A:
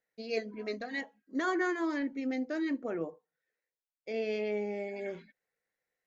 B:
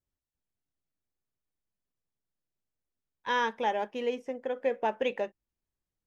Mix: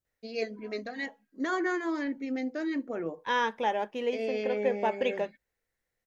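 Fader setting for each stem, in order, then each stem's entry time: +1.0, +0.5 dB; 0.05, 0.00 s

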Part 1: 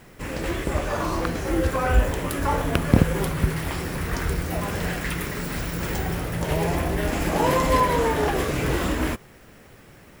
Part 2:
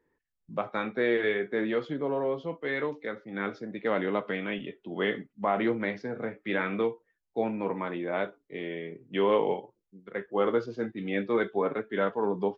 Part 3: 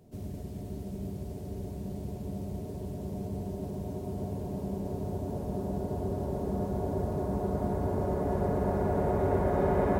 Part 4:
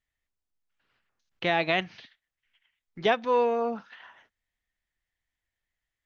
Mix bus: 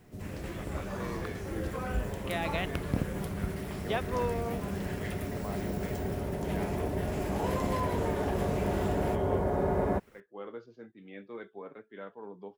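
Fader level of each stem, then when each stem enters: -14.0, -16.5, -2.0, -9.0 dB; 0.00, 0.00, 0.00, 0.85 s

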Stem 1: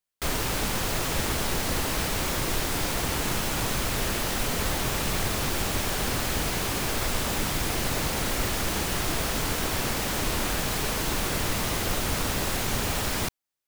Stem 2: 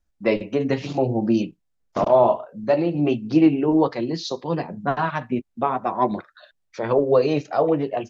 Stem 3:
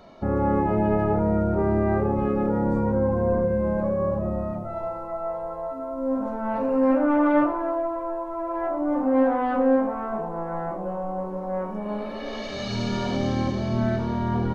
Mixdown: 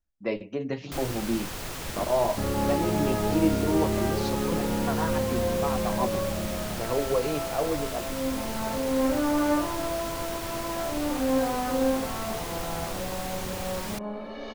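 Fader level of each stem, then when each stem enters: -8.0, -9.0, -5.0 dB; 0.70, 0.00, 2.15 s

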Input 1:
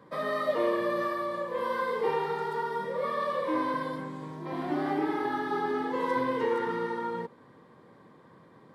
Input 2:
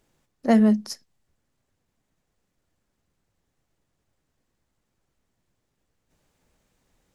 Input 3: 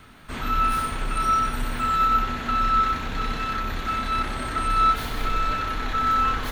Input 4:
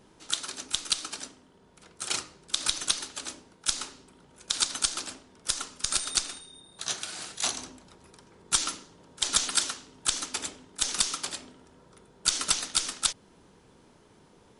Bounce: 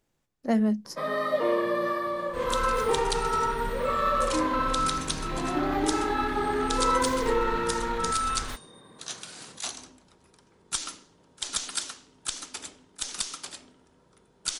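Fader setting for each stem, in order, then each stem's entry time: +2.0, -6.5, -7.5, -5.5 dB; 0.85, 0.00, 2.05, 2.20 s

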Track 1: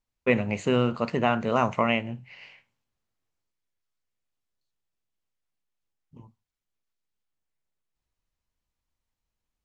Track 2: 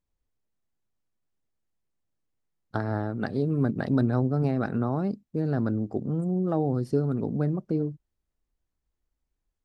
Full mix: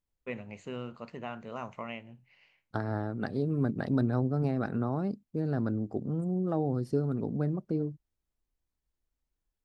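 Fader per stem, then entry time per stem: -16.0, -4.0 dB; 0.00, 0.00 s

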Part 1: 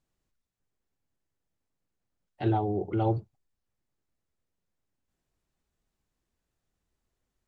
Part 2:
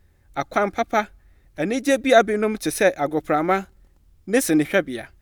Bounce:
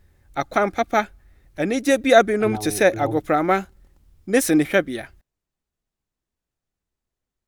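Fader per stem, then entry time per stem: -3.5, +1.0 dB; 0.00, 0.00 s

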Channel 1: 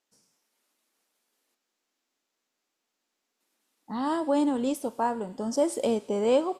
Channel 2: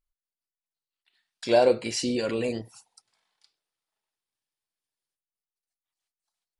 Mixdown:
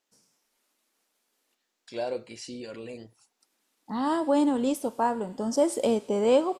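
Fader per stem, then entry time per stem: +1.5, -12.0 dB; 0.00, 0.45 s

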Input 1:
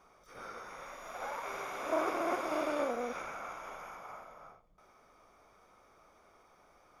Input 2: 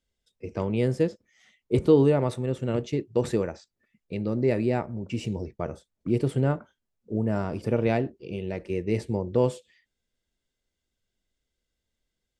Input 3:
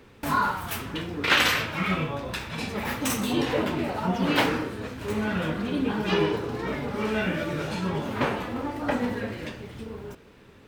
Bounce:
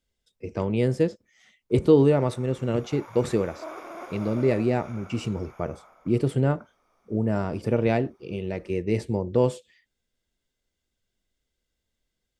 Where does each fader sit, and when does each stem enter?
-6.0 dB, +1.5 dB, off; 1.70 s, 0.00 s, off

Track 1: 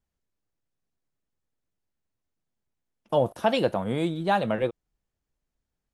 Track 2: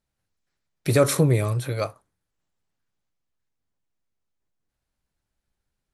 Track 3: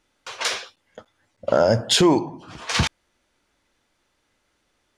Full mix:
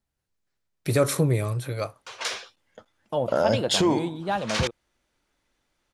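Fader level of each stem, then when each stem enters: -3.5, -3.0, -5.5 dB; 0.00, 0.00, 1.80 s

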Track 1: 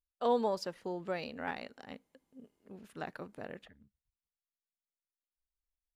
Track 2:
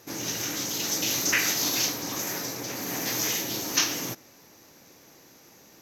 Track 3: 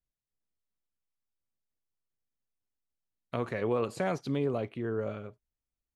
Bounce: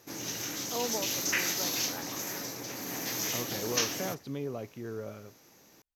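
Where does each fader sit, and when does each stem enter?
-5.5, -5.5, -6.0 dB; 0.50, 0.00, 0.00 s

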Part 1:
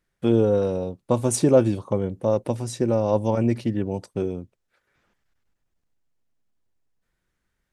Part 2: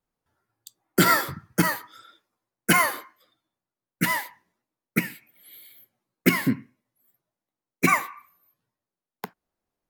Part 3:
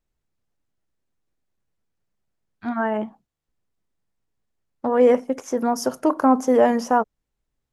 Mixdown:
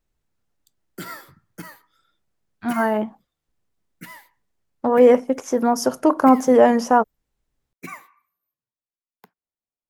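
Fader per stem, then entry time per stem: off, -16.5 dB, +3.0 dB; off, 0.00 s, 0.00 s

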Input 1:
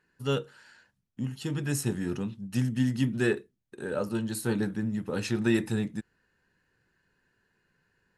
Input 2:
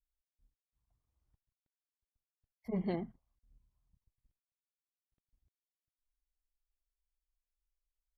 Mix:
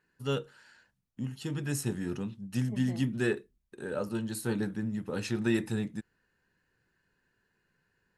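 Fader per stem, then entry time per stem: -3.0, -8.5 dB; 0.00, 0.00 s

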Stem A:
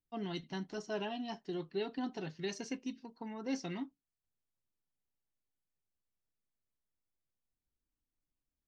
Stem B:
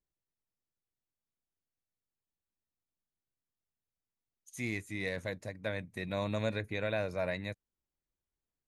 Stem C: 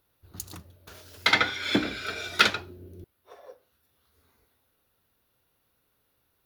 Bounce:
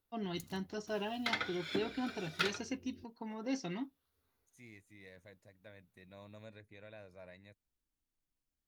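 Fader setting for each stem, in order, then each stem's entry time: 0.0, -19.5, -14.5 dB; 0.00, 0.00, 0.00 s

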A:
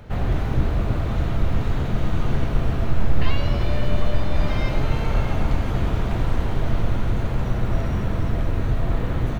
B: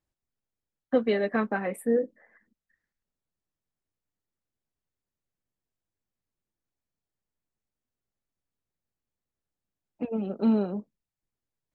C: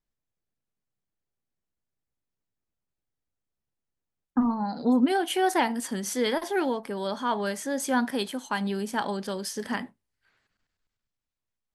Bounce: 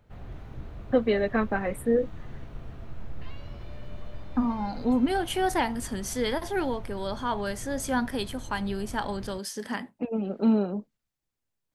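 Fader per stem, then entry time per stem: -19.5, +1.0, -2.0 dB; 0.00, 0.00, 0.00 s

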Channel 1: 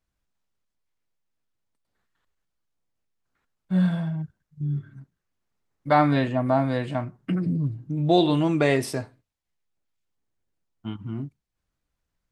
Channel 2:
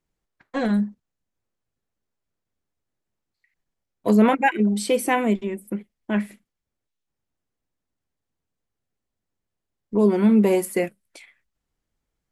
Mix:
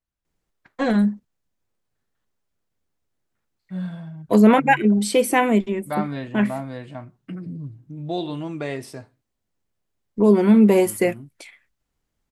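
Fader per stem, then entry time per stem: -8.0, +3.0 dB; 0.00, 0.25 s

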